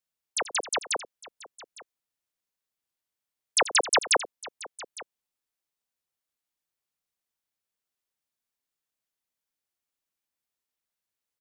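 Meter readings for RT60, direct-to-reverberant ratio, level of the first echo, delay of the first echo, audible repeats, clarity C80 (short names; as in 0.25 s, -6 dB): none, none, -15.0 dB, 85 ms, 2, none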